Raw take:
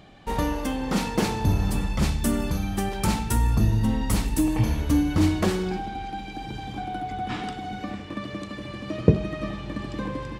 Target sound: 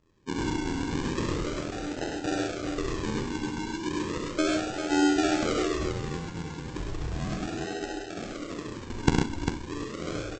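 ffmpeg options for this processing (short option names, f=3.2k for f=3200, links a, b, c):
-filter_complex "[0:a]afftdn=nr=17:nf=-32,tremolo=f=83:d=0.974,afftfilt=real='re*between(b*sr/4096,280,5300)':imag='im*between(b*sr/4096,280,5300)':win_size=4096:overlap=0.75,asplit=2[a][b];[b]acompressor=threshold=-40dB:ratio=16,volume=-2dB[c];[a][c]amix=inputs=2:normalize=0,bandreject=f=383.6:t=h:w=4,bandreject=f=767.2:t=h:w=4,bandreject=f=1.1508k:t=h:w=4,bandreject=f=1.5344k:t=h:w=4,bandreject=f=1.918k:t=h:w=4,bandreject=f=2.3016k:t=h:w=4,bandreject=f=2.6852k:t=h:w=4,bandreject=f=3.0688k:t=h:w=4,bandreject=f=3.4524k:t=h:w=4,bandreject=f=3.836k:t=h:w=4,bandreject=f=4.2196k:t=h:w=4,bandreject=f=4.6032k:t=h:w=4,bandreject=f=4.9868k:t=h:w=4,bandreject=f=5.3704k:t=h:w=4,aresample=16000,acrusher=samples=20:mix=1:aa=0.000001:lfo=1:lforange=12:lforate=0.35,aresample=44100,aecho=1:1:48|66|103|133|398:0.251|0.473|0.596|0.473|0.473"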